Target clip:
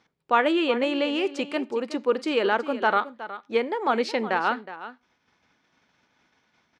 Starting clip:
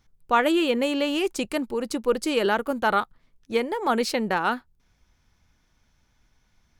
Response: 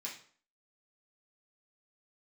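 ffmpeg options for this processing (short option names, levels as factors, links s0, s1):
-filter_complex "[0:a]agate=range=0.0224:threshold=0.00158:ratio=3:detection=peak,acompressor=mode=upward:threshold=0.00708:ratio=2.5,highpass=250,lowpass=3800,aecho=1:1:367:0.2,asplit=2[s0][s1];[1:a]atrim=start_sample=2205,afade=t=out:st=0.18:d=0.01,atrim=end_sample=8379[s2];[s1][s2]afir=irnorm=-1:irlink=0,volume=0.168[s3];[s0][s3]amix=inputs=2:normalize=0"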